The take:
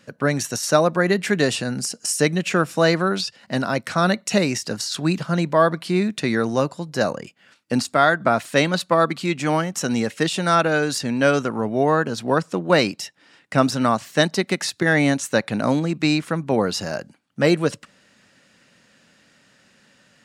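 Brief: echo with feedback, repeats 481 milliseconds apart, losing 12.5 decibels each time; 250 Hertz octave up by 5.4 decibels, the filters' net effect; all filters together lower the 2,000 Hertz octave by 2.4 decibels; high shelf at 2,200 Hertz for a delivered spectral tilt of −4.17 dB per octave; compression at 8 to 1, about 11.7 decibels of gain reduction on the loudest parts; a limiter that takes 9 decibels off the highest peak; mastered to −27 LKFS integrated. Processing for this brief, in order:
parametric band 250 Hz +7 dB
parametric band 2,000 Hz −7 dB
high-shelf EQ 2,200 Hz +7 dB
downward compressor 8 to 1, threshold −22 dBFS
brickwall limiter −17 dBFS
repeating echo 481 ms, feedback 24%, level −12.5 dB
level +1 dB

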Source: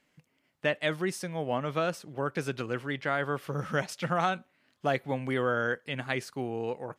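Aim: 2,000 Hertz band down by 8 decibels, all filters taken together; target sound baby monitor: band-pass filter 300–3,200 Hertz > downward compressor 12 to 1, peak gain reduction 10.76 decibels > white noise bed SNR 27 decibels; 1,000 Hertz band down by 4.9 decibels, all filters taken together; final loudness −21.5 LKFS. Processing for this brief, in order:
band-pass filter 300–3,200 Hz
parametric band 1,000 Hz −4.5 dB
parametric band 2,000 Hz −8.5 dB
downward compressor 12 to 1, threshold −36 dBFS
white noise bed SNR 27 dB
level +21 dB

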